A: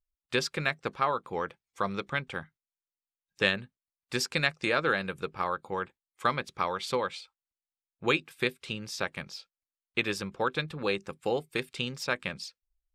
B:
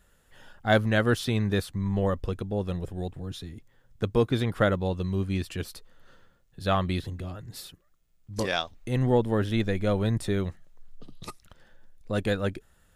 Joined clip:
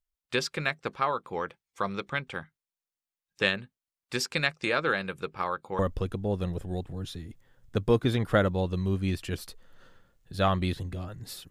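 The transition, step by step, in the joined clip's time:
A
5.79 s: go over to B from 2.06 s

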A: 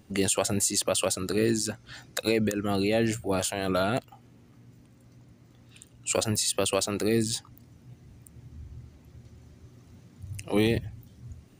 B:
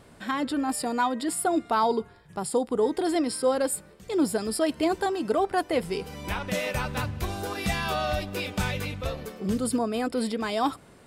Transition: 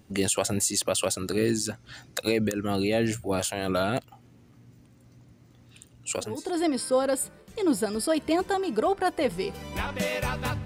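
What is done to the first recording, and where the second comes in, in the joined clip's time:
A
6.32 s: go over to B from 2.84 s, crossfade 0.60 s quadratic

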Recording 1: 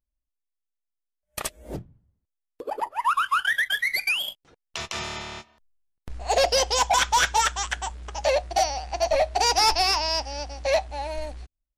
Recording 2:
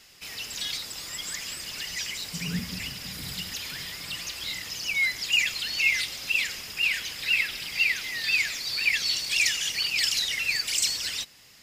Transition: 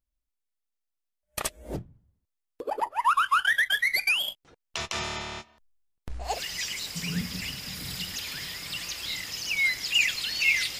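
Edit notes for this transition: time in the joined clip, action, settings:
recording 1
6.31 s: go over to recording 2 from 1.69 s, crossfade 0.18 s

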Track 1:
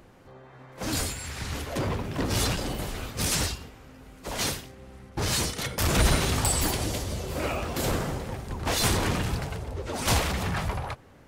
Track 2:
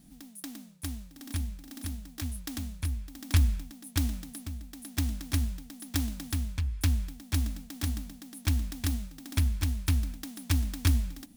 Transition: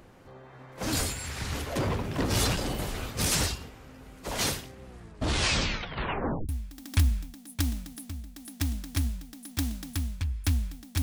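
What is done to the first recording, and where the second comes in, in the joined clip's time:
track 1
4.84 s: tape stop 1.65 s
6.49 s: go over to track 2 from 2.86 s

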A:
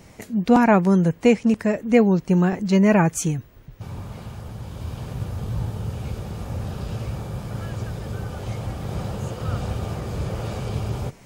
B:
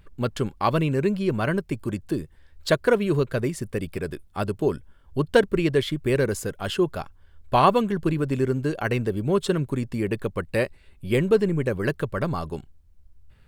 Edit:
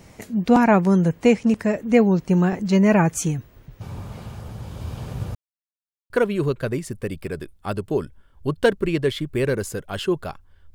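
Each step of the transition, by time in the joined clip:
A
5.35–6.10 s: mute
6.10 s: go over to B from 2.81 s

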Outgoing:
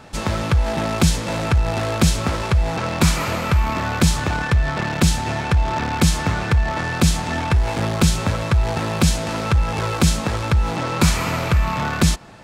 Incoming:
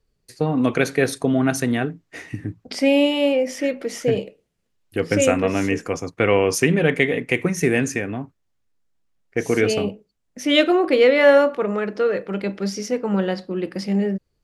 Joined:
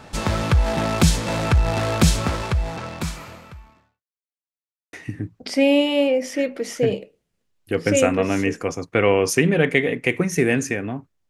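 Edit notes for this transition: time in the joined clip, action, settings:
outgoing
2.14–4.03 s: fade out quadratic
4.03–4.93 s: mute
4.93 s: go over to incoming from 2.18 s

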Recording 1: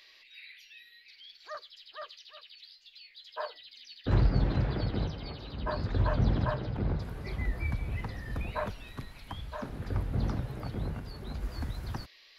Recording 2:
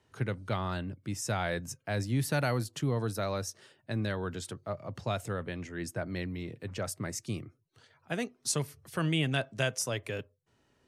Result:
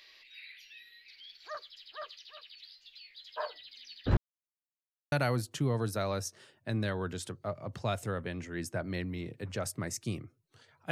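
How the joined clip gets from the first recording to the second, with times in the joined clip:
recording 1
4.17–5.12 s: mute
5.12 s: go over to recording 2 from 2.34 s

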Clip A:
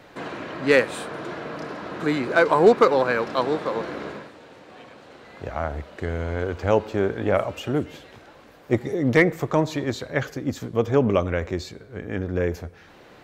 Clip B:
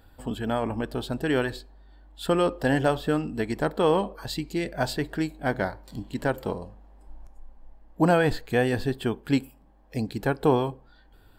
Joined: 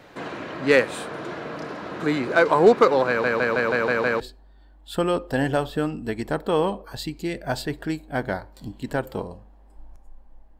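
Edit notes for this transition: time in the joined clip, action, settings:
clip A
3.08 s: stutter in place 0.16 s, 7 plays
4.20 s: go over to clip B from 1.51 s

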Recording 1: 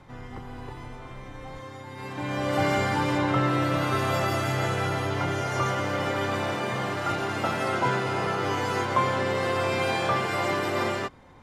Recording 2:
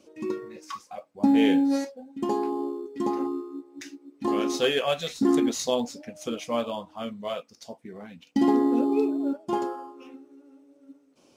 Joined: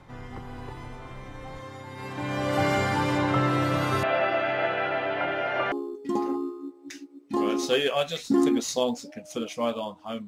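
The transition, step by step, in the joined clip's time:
recording 1
4.03–5.72 s: cabinet simulation 320–3200 Hz, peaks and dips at 450 Hz -4 dB, 640 Hz +9 dB, 1.1 kHz -7 dB, 1.6 kHz +5 dB, 2.6 kHz +5 dB
5.72 s: go over to recording 2 from 2.63 s

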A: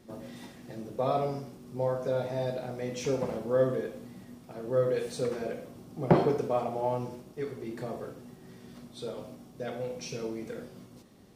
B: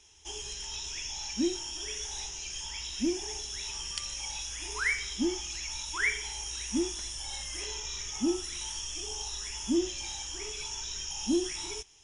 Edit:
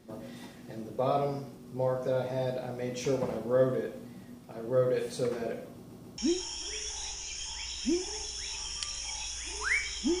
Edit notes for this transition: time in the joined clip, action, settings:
A
5.76 s: stutter in place 0.14 s, 3 plays
6.18 s: go over to B from 1.33 s

